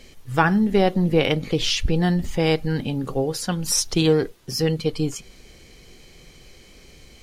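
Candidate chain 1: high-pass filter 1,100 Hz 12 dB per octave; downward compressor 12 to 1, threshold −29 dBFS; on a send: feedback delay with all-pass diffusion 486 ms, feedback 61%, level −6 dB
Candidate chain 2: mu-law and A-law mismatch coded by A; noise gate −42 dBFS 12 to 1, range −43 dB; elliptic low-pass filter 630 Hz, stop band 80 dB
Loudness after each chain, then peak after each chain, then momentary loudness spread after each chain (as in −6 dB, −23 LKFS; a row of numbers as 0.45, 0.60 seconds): −34.0, −24.0 LKFS; −14.5, −7.5 dBFS; 13, 9 LU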